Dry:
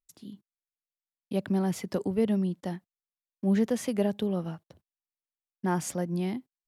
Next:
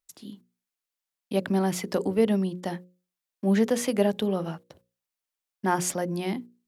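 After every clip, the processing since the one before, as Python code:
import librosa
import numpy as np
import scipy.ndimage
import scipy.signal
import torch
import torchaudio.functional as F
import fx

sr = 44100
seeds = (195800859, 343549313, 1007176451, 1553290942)

y = fx.low_shelf(x, sr, hz=220.0, db=-9.0)
y = fx.hum_notches(y, sr, base_hz=60, count=9)
y = F.gain(torch.from_numpy(y), 7.0).numpy()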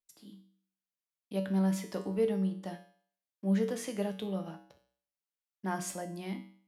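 y = fx.comb_fb(x, sr, f0_hz=64.0, decay_s=0.54, harmonics='odd', damping=0.0, mix_pct=80)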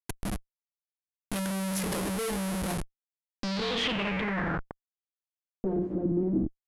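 y = fx.schmitt(x, sr, flips_db=-47.5)
y = fx.filter_sweep_lowpass(y, sr, from_hz=11000.0, to_hz=320.0, start_s=2.74, end_s=5.96, q=4.4)
y = F.gain(torch.from_numpy(y), 4.5).numpy()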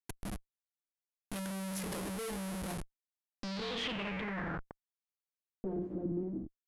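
y = fx.fade_out_tail(x, sr, length_s=0.52)
y = F.gain(torch.from_numpy(y), -8.0).numpy()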